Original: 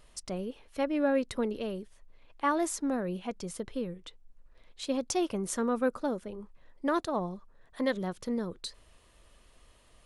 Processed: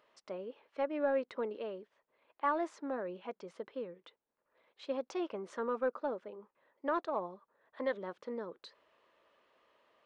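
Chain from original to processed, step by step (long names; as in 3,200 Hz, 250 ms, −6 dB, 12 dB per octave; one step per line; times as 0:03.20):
high-pass filter 520 Hz 12 dB per octave
notch filter 730 Hz, Q 12
in parallel at −11.5 dB: gain into a clipping stage and back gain 29 dB
on the sum: head-to-tape spacing loss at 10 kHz 37 dB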